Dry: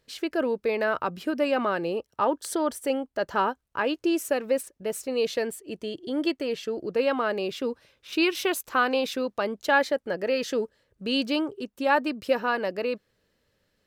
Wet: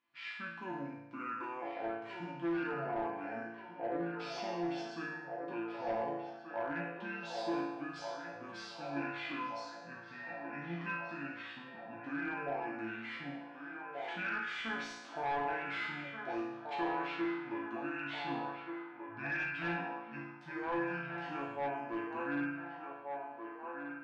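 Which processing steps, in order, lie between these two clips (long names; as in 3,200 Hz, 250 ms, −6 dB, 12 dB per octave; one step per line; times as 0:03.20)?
high-pass filter 460 Hz 6 dB per octave
spectral tilt +3 dB per octave
in parallel at +2 dB: brickwall limiter −19.5 dBFS, peak gain reduction 11.5 dB
on the sum: resonators tuned to a chord G3 major, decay 0.52 s
hard clipping −35 dBFS, distortion −12 dB
high-frequency loss of the air 110 metres
on a send: feedback echo with a band-pass in the loop 855 ms, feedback 70%, band-pass 1,400 Hz, level −4 dB
on the sum: wrong playback speed 78 rpm record played at 45 rpm
level +4.5 dB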